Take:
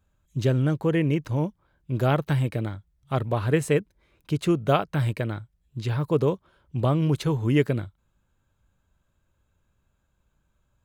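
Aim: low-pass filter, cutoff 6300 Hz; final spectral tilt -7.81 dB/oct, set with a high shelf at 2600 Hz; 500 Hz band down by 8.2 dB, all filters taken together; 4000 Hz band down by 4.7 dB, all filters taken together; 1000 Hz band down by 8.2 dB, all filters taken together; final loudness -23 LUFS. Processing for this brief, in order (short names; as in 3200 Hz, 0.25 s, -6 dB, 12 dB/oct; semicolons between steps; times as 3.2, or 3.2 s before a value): LPF 6300 Hz; bell 500 Hz -8.5 dB; bell 1000 Hz -8.5 dB; high shelf 2600 Hz +3.5 dB; bell 4000 Hz -8.5 dB; gain +5 dB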